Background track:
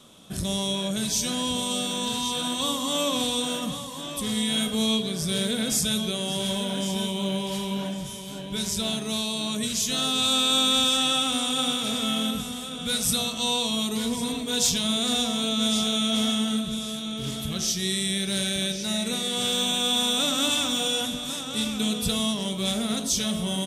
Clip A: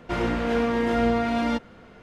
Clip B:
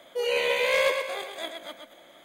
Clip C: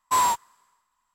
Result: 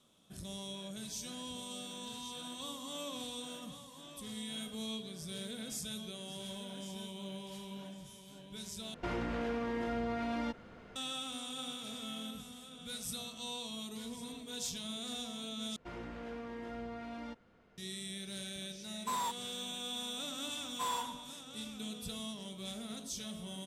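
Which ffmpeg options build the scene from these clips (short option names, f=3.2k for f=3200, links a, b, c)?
-filter_complex "[1:a]asplit=2[a][b];[3:a]asplit=2[c][d];[0:a]volume=-17dB[e];[a]acompressor=threshold=-27dB:ratio=6:attack=3.2:release=140:knee=1:detection=peak[f];[b]acompressor=threshold=-26dB:ratio=2:attack=8.5:release=132:knee=1:detection=peak[g];[c]alimiter=limit=-21.5dB:level=0:latency=1:release=71[h];[d]asplit=2[i][j];[j]adelay=103,lowpass=f=2.2k:p=1,volume=-6dB,asplit=2[k][l];[l]adelay=103,lowpass=f=2.2k:p=1,volume=0.43,asplit=2[m][n];[n]adelay=103,lowpass=f=2.2k:p=1,volume=0.43,asplit=2[o][p];[p]adelay=103,lowpass=f=2.2k:p=1,volume=0.43,asplit=2[q][r];[r]adelay=103,lowpass=f=2.2k:p=1,volume=0.43[s];[i][k][m][o][q][s]amix=inputs=6:normalize=0[t];[e]asplit=3[u][v][w];[u]atrim=end=8.944[x];[f]atrim=end=2.02,asetpts=PTS-STARTPTS,volume=-5.5dB[y];[v]atrim=start=10.956:end=15.764[z];[g]atrim=end=2.02,asetpts=PTS-STARTPTS,volume=-17.5dB[aa];[w]atrim=start=17.776[ab];[h]atrim=end=1.14,asetpts=PTS-STARTPTS,volume=-7.5dB,afade=t=in:d=0.004:c=hsin,afade=t=out:st=1.136:d=0.004:c=hsin,adelay=18960[ac];[t]atrim=end=1.14,asetpts=PTS-STARTPTS,volume=-16.5dB,afade=t=in:d=0.004:c=hsin,afade=t=out:st=1.136:d=0.004:c=hsin,adelay=911988S[ad];[x][y]acrossfade=d=0.004:c1=hsin:c2=hsin[ae];[ae][z]acrossfade=d=0.004:c1=hsin:c2=hsin[af];[af][aa]acrossfade=d=0.004:c1=hsin:c2=hsin[ag];[ag][ab]acrossfade=d=0.004:c1=hsin:c2=hsin[ah];[ah][ac][ad]amix=inputs=3:normalize=0"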